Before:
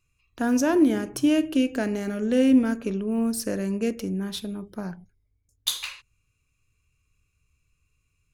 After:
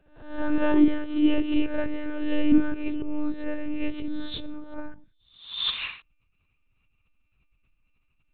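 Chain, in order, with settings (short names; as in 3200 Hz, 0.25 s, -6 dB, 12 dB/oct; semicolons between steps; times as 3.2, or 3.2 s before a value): spectral swells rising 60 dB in 0.58 s; monotone LPC vocoder at 8 kHz 300 Hz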